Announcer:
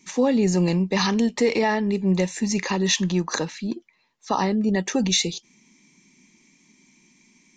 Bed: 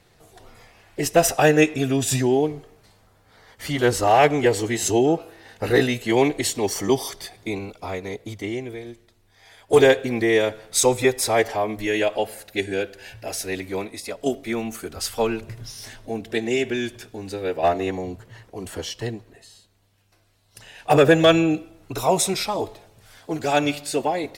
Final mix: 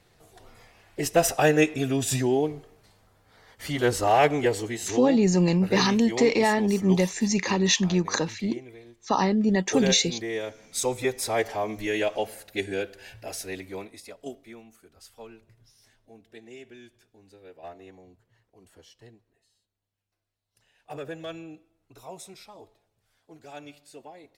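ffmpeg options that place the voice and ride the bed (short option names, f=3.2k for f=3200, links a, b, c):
-filter_complex "[0:a]adelay=4800,volume=-0.5dB[a];[1:a]volume=4dB,afade=t=out:st=4.35:d=0.68:silence=0.375837,afade=t=in:st=10.38:d=1.4:silence=0.398107,afade=t=out:st=13.02:d=1.63:silence=0.125893[b];[a][b]amix=inputs=2:normalize=0"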